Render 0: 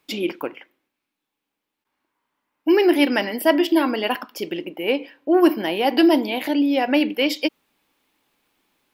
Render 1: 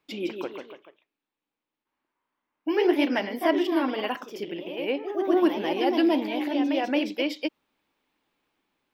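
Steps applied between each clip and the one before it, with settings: peaking EQ 14 kHz -10.5 dB 1.8 oct; ever faster or slower copies 168 ms, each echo +1 st, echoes 3, each echo -6 dB; trim -6.5 dB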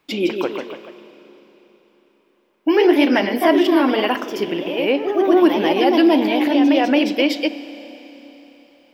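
in parallel at +2 dB: peak limiter -20.5 dBFS, peak gain reduction 11 dB; on the sum: Schroeder reverb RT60 4 s, combs from 28 ms, DRR 14 dB; trim +4 dB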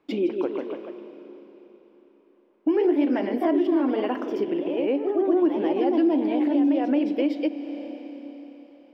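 FFT filter 160 Hz 0 dB, 290 Hz +10 dB, 11 kHz -14 dB; compression 2:1, threshold -21 dBFS, peak gain reduction 11.5 dB; trim -5.5 dB

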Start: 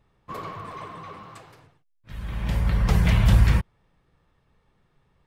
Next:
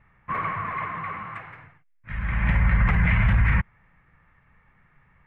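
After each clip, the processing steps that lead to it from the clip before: FFT filter 190 Hz 0 dB, 400 Hz -9 dB, 2.1 kHz +11 dB, 4.6 kHz -25 dB; peak limiter -17 dBFS, peak gain reduction 11 dB; trim +5 dB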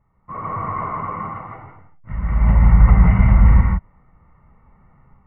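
level rider gain up to 11 dB; Savitzky-Golay filter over 65 samples; gated-style reverb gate 190 ms rising, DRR 1 dB; trim -4 dB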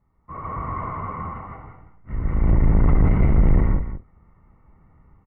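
octave divider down 1 oct, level +3 dB; saturation -5 dBFS, distortion -12 dB; delay 189 ms -11 dB; trim -5 dB

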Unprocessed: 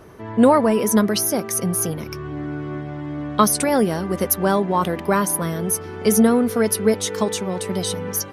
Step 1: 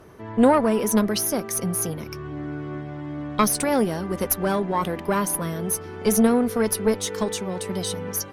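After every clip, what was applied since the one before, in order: valve stage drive 5 dB, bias 0.65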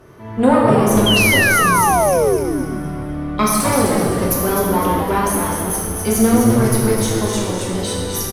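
plate-style reverb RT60 1.7 s, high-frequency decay 0.8×, DRR -4 dB; painted sound fall, 1.06–2.37 s, 360–3300 Hz -16 dBFS; on a send: frequency-shifting echo 255 ms, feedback 42%, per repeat -110 Hz, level -5.5 dB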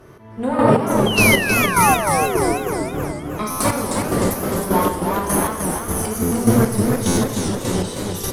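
square tremolo 1.7 Hz, depth 65%, duty 30%; buffer glitch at 3.50/6.22/7.07 s, samples 512, times 8; modulated delay 310 ms, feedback 57%, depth 181 cents, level -5 dB

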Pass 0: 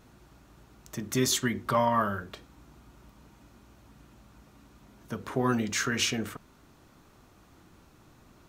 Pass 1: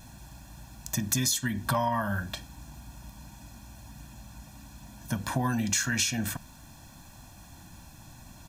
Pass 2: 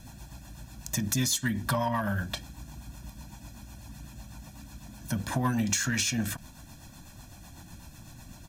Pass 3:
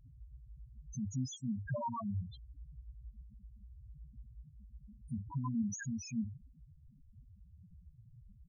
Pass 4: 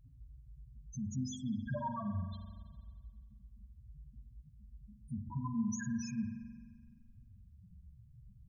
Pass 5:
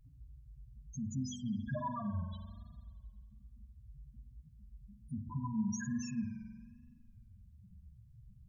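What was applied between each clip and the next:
tone controls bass +2 dB, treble +9 dB; comb 1.2 ms, depth 99%; compression 16:1, threshold -26 dBFS, peak gain reduction 13.5 dB; trim +2.5 dB
rotary cabinet horn 8 Hz; in parallel at -6.5 dB: hard clipper -30 dBFS, distortion -9 dB; on the sum: endings held to a fixed fall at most 400 dB/s
loudest bins only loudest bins 2; trim -4 dB
reverberation RT60 1.7 s, pre-delay 43 ms, DRR 5 dB; trim -1 dB
vibrato 1.2 Hz 78 cents

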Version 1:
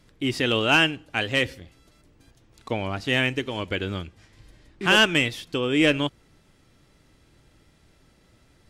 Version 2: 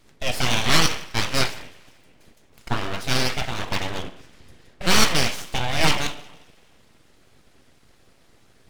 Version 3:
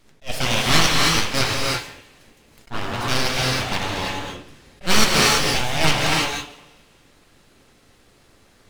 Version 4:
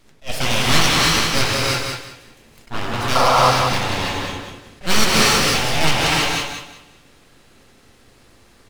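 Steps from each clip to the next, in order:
two-slope reverb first 0.55 s, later 1.7 s, DRR 3 dB; harmonic-percussive split percussive +5 dB; full-wave rectifier
gated-style reverb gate 360 ms rising, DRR -1.5 dB; attacks held to a fixed rise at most 340 dB/s
painted sound noise, 3.15–3.51 s, 480–1400 Hz -16 dBFS; feedback delay 185 ms, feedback 23%, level -6 dB; in parallel at -7 dB: hard clipper -18.5 dBFS, distortion -6 dB; on the sum: trim -1 dB

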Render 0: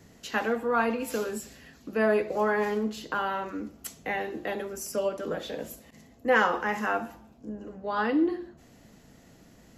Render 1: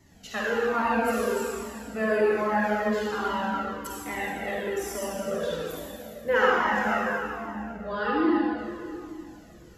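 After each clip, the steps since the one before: reverberation RT60 2.7 s, pre-delay 42 ms, DRR -5.5 dB; Shepard-style flanger falling 1.2 Hz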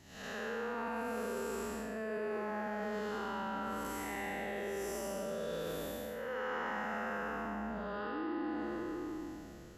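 spectral blur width 276 ms; reverse; compression, threshold -36 dBFS, peak gain reduction 14 dB; reverse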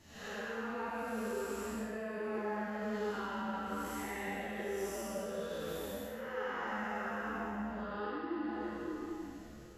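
three-phase chorus; trim +2.5 dB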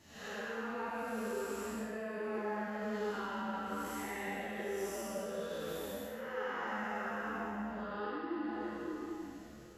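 bass shelf 71 Hz -9 dB

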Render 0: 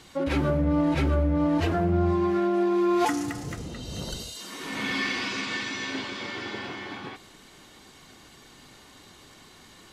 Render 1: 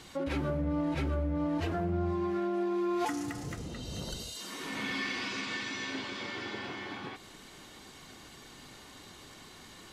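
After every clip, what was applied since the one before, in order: compression 1.5:1, threshold -43 dBFS, peak gain reduction 8.5 dB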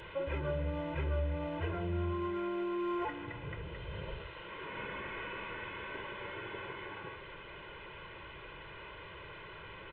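one-bit delta coder 16 kbps, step -38.5 dBFS; in parallel at -12 dB: overload inside the chain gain 27 dB; on the sum: comb 2 ms, depth 95%; trim -7.5 dB

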